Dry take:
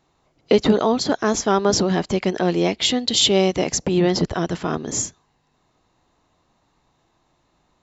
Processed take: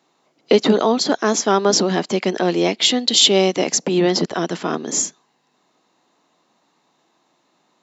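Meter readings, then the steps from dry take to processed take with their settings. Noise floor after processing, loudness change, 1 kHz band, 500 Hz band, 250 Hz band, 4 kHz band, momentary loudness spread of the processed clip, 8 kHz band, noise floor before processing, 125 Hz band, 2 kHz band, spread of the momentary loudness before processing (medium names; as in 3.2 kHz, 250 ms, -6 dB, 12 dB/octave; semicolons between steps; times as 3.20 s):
-65 dBFS, +2.5 dB, +2.0 dB, +2.0 dB, +1.0 dB, +4.0 dB, 9 LU, no reading, -66 dBFS, -2.5 dB, +3.0 dB, 8 LU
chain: high-pass 190 Hz 24 dB/octave; peaking EQ 4.9 kHz +2.5 dB 2 oct; trim +2 dB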